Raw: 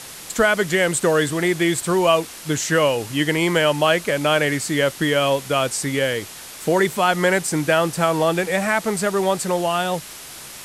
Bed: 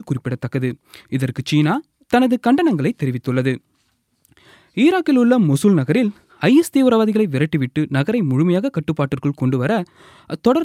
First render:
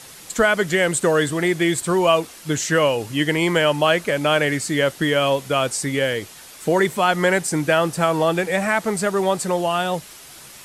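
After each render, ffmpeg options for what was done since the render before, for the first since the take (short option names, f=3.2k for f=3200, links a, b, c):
-af "afftdn=nr=6:nf=-38"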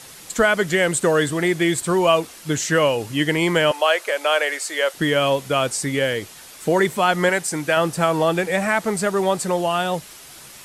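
-filter_complex "[0:a]asettb=1/sr,asplit=3[a][b][c];[a]atrim=end=3.714[d];[b]atrim=start=3.71:end=4.94,asetpts=PTS-STARTPTS,afade=t=in:d=0.004:c=qsin,afade=t=out:st=1.226:d=0.004:c=qsin,highpass=f=470:w=0.5412,highpass=f=470:w=1.3066[e];[c]atrim=start=4.936[f];[d][e]acrossfade=d=0.004:c1=hsin:c2=qsin[g];[g][f]acrossfade=d=0.004:c1=qsin:c2=hsin,asettb=1/sr,asplit=3[h][i][j];[h]atrim=end=7.294[k];[i]atrim=start=7.29:end=7.77,asetpts=PTS-STARTPTS,afade=t=in:d=0.004:c=qsin,afade=t=out:st=0.476:d=0.004:c=qsin,lowshelf=f=410:g=-7[l];[j]atrim=start=7.766[m];[k][l]acrossfade=d=0.004:c1=hsin:c2=qsin[n];[n][m]acrossfade=d=0.004:c1=qsin:c2=hsin"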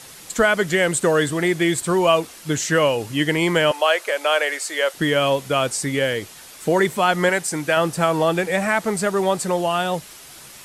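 -af anull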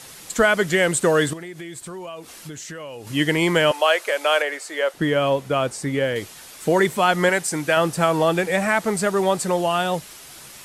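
-filter_complex "[0:a]asettb=1/sr,asplit=3[a][b][c];[a]atrim=end=1.334[d];[b]atrim=start=1.33:end=3.07,asetpts=PTS-STARTPTS,afade=t=in:d=0.004:c=qsin,afade=t=out:st=1.736:d=0.004:c=qsin,acompressor=threshold=-33dB:ratio=6:attack=3.2:release=140:knee=1:detection=peak[e];[c]atrim=start=3.066[f];[d][e]acrossfade=d=0.004:c1=hsin:c2=qsin[g];[g][f]acrossfade=d=0.004:c1=qsin:c2=hsin,asettb=1/sr,asplit=3[h][i][j];[h]atrim=end=4.424[k];[i]atrim=start=4.42:end=6.16,asetpts=PTS-STARTPTS,afade=t=in:d=0.004:c=qsin,afade=t=out:st=1.736:d=0.004:c=qsin,highshelf=f=2.3k:g=-9[l];[j]atrim=start=6.156[m];[k][l]acrossfade=d=0.004:c1=hsin:c2=qsin[n];[n][m]acrossfade=d=0.004:c1=qsin:c2=hsin"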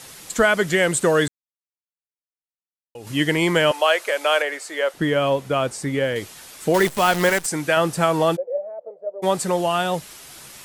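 -filter_complex "[0:a]asettb=1/sr,asplit=3[a][b][c];[a]atrim=end=6.744[d];[b]atrim=start=6.74:end=7.46,asetpts=PTS-STARTPTS,afade=t=in:d=0.004:c=qsin,afade=t=out:st=0.716:d=0.004:c=qsin,acrusher=bits=5:dc=4:mix=0:aa=0.000001[e];[c]atrim=start=7.456[f];[d][e]acrossfade=d=0.004:c1=hsin:c2=qsin[g];[g][f]acrossfade=d=0.004:c1=qsin:c2=hsin,asplit=3[h][i][j];[h]afade=t=out:st=8.35:d=0.02[k];[i]asuperpass=centerf=550:order=4:qfactor=4.5,afade=t=in:st=8.35:d=0.02,afade=t=out:st=9.22:d=0.02[l];[j]afade=t=in:st=9.22:d=0.02[m];[k][l][m]amix=inputs=3:normalize=0,asplit=3[n][o][p];[n]atrim=end=1.28,asetpts=PTS-STARTPTS,afade=t=out:st=1.276:d=0.004:c=hsin[q];[o]atrim=start=1.28:end=2.95,asetpts=PTS-STARTPTS,volume=0[r];[p]atrim=start=2.95,asetpts=PTS-STARTPTS,afade=t=in:d=0.004:c=hsin[s];[q][r][s]concat=n=3:v=0:a=1"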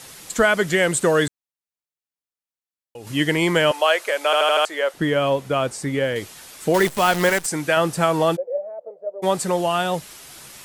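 -filter_complex "[0:a]asplit=6[a][b][c][d][e][f];[a]atrim=end=4.332[g];[b]atrim=start=4.248:end=4.332[h];[c]atrim=start=4.248:end=4.332[i];[d]atrim=start=4.248:end=4.332[j];[e]atrim=start=4.248:end=4.332[k];[f]atrim=start=4.648[l];[g][h]acrossfade=d=0.004:c1=hsin:c2=hsin[m];[m][i]acrossfade=d=0.004:c1=hsin:c2=hsin[n];[n][j]acrossfade=d=0.004:c1=hsin:c2=hsin[o];[o][k]acrossfade=d=0.004:c1=hsin:c2=hsin[p];[p][l]acrossfade=d=0.004:c1=hsin:c2=hsin"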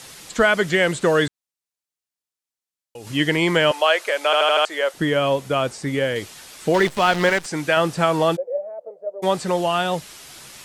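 -filter_complex "[0:a]acrossover=split=4800[a][b];[b]acompressor=threshold=-46dB:ratio=4:attack=1:release=60[c];[a][c]amix=inputs=2:normalize=0,equalizer=f=6.9k:t=o:w=2:g=5"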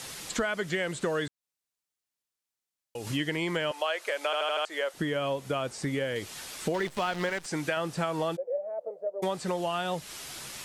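-af "acompressor=threshold=-29dB:ratio=4"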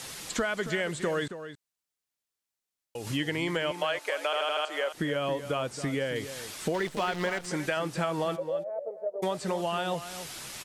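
-filter_complex "[0:a]asplit=2[a][b];[b]adelay=274.1,volume=-11dB,highshelf=f=4k:g=-6.17[c];[a][c]amix=inputs=2:normalize=0"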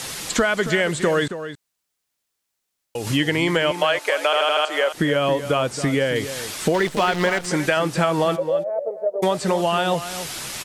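-af "volume=10dB"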